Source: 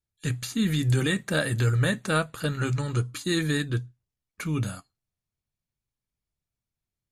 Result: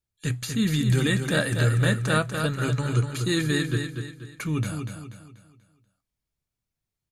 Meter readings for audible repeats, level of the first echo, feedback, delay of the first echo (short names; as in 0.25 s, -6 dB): 4, -6.5 dB, 39%, 0.242 s